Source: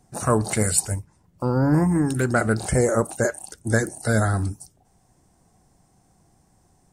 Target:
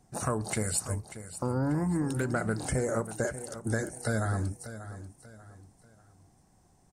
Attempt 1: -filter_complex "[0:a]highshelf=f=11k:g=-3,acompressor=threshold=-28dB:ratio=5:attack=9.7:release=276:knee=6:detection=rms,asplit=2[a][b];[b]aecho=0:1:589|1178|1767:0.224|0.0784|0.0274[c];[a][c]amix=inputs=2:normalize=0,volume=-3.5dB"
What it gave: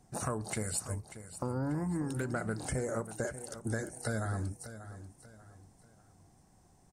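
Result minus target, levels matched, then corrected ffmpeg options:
compressor: peak gain reduction +5 dB
-filter_complex "[0:a]highshelf=f=11k:g=-3,acompressor=threshold=-21.5dB:ratio=5:attack=9.7:release=276:knee=6:detection=rms,asplit=2[a][b];[b]aecho=0:1:589|1178|1767:0.224|0.0784|0.0274[c];[a][c]amix=inputs=2:normalize=0,volume=-3.5dB"

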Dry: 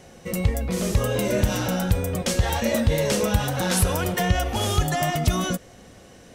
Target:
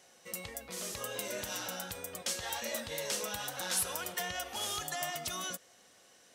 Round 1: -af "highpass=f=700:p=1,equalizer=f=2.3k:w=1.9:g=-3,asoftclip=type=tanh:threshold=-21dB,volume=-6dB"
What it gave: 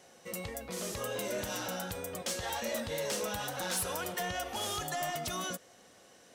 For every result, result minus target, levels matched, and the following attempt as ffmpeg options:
soft clip: distortion +16 dB; 500 Hz band +4.0 dB
-af "highpass=f=700:p=1,equalizer=f=2.3k:w=1.9:g=-3,asoftclip=type=tanh:threshold=-10.5dB,volume=-6dB"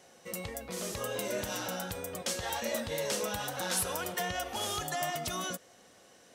500 Hz band +4.0 dB
-af "highpass=f=1.7k:p=1,equalizer=f=2.3k:w=1.9:g=-3,asoftclip=type=tanh:threshold=-10.5dB,volume=-6dB"

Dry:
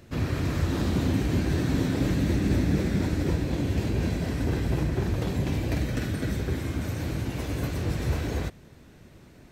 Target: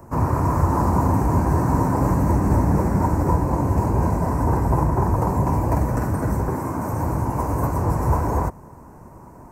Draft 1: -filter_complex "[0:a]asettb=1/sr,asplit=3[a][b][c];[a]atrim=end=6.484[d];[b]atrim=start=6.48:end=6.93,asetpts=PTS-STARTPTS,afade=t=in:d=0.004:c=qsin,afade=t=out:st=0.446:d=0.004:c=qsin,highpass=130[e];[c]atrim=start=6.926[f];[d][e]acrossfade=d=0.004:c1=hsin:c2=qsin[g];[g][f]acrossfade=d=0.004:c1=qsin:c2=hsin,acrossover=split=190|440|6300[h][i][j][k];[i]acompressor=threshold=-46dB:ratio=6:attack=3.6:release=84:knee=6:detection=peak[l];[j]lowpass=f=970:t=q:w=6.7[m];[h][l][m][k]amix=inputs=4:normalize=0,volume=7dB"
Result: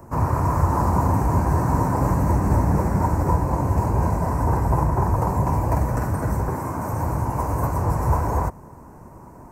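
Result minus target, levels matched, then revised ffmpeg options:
compressor: peak gain reduction +9.5 dB
-filter_complex "[0:a]asettb=1/sr,asplit=3[a][b][c];[a]atrim=end=6.484[d];[b]atrim=start=6.48:end=6.93,asetpts=PTS-STARTPTS,afade=t=in:d=0.004:c=qsin,afade=t=out:st=0.446:d=0.004:c=qsin,highpass=130[e];[c]atrim=start=6.926[f];[d][e]acrossfade=d=0.004:c1=hsin:c2=qsin[g];[g][f]acrossfade=d=0.004:c1=qsin:c2=hsin,acrossover=split=190|440|6300[h][i][j][k];[i]acompressor=threshold=-34.5dB:ratio=6:attack=3.6:release=84:knee=6:detection=peak[l];[j]lowpass=f=970:t=q:w=6.7[m];[h][l][m][k]amix=inputs=4:normalize=0,volume=7dB"

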